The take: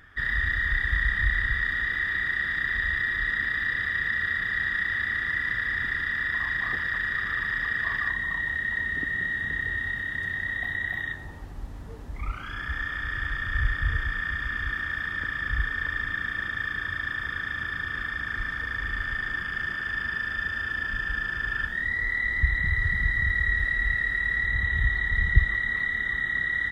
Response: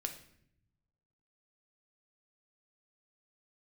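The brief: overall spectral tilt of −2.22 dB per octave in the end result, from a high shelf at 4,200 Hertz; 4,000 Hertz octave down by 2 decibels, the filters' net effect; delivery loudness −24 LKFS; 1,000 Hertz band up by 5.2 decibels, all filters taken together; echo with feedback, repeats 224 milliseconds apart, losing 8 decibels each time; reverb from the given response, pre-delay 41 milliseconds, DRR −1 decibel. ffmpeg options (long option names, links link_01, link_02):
-filter_complex "[0:a]equalizer=frequency=1000:width_type=o:gain=7,equalizer=frequency=4000:width_type=o:gain=-6.5,highshelf=frequency=4200:gain=7.5,aecho=1:1:224|448|672|896|1120:0.398|0.159|0.0637|0.0255|0.0102,asplit=2[link_01][link_02];[1:a]atrim=start_sample=2205,adelay=41[link_03];[link_02][link_03]afir=irnorm=-1:irlink=0,volume=1.5dB[link_04];[link_01][link_04]amix=inputs=2:normalize=0,volume=-4dB"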